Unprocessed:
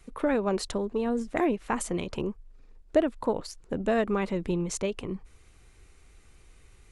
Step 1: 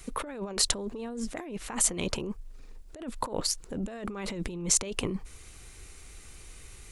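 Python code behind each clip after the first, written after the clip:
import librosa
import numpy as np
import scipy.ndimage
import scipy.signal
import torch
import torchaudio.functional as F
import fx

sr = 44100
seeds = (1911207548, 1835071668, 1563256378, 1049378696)

y = fx.over_compress(x, sr, threshold_db=-35.0, ratio=-1.0)
y = fx.high_shelf(y, sr, hz=3800.0, db=10.5)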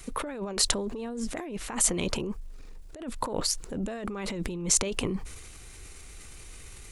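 y = fx.transient(x, sr, attack_db=-1, sustain_db=5)
y = y * 10.0 ** (1.5 / 20.0)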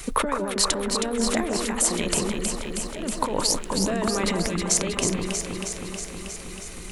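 y = fx.rider(x, sr, range_db=10, speed_s=0.5)
y = fx.low_shelf(y, sr, hz=260.0, db=-4.0)
y = fx.echo_alternate(y, sr, ms=159, hz=1600.0, feedback_pct=85, wet_db=-4)
y = y * 10.0 ** (4.5 / 20.0)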